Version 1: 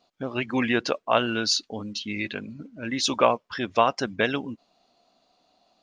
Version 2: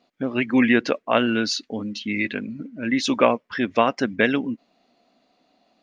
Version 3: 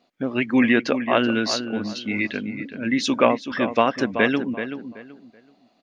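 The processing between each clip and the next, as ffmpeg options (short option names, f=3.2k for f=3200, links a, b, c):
-af "equalizer=f=125:t=o:w=1:g=3,equalizer=f=250:t=o:w=1:g=11,equalizer=f=500:t=o:w=1:g=5,equalizer=f=2k:t=o:w=1:g=11,volume=-4dB"
-filter_complex "[0:a]asplit=2[a][b];[b]adelay=380,lowpass=f=2.6k:p=1,volume=-9dB,asplit=2[c][d];[d]adelay=380,lowpass=f=2.6k:p=1,volume=0.26,asplit=2[e][f];[f]adelay=380,lowpass=f=2.6k:p=1,volume=0.26[g];[a][c][e][g]amix=inputs=4:normalize=0"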